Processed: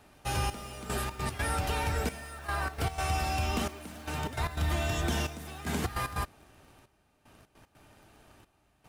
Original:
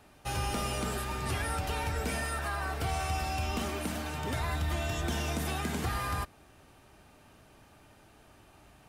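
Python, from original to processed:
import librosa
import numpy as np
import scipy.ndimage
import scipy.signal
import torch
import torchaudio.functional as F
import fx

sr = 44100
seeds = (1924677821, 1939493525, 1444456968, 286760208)

p1 = fx.step_gate(x, sr, bpm=151, pattern='xxxxx....xx.x.xx', floor_db=-12.0, edge_ms=4.5)
p2 = fx.quant_dither(p1, sr, seeds[0], bits=8, dither='none')
y = p1 + (p2 * librosa.db_to_amplitude(-10.0))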